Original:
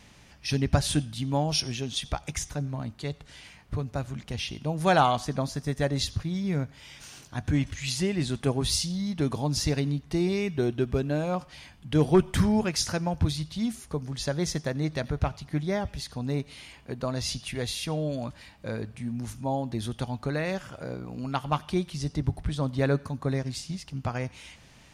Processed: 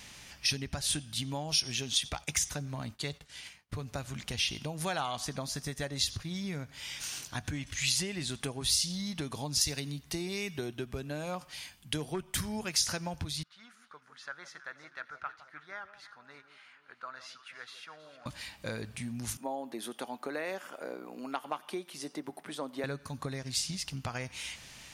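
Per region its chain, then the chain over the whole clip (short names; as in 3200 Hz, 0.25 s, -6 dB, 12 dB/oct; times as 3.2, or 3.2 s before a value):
2.03–3.74 expander -44 dBFS + HPF 45 Hz + hard clip -21.5 dBFS
9.61–12.76 high shelf 10000 Hz +9 dB + three-band expander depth 40%
13.43–18.26 band-pass 1400 Hz, Q 5.5 + echo with dull and thin repeats by turns 0.16 s, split 1000 Hz, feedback 68%, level -11 dB
19.37–22.84 HPF 270 Hz 24 dB/oct + bell 5200 Hz -12.5 dB 2.4 oct
whole clip: high shelf 11000 Hz +4.5 dB; compressor 6:1, threshold -32 dBFS; tilt shelf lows -5.5 dB, about 1200 Hz; gain +2.5 dB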